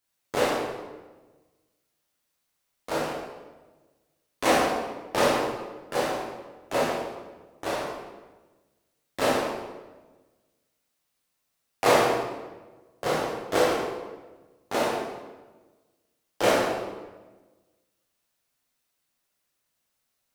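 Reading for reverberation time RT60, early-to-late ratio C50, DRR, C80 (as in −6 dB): 1.3 s, 0.0 dB, −5.5 dB, 2.5 dB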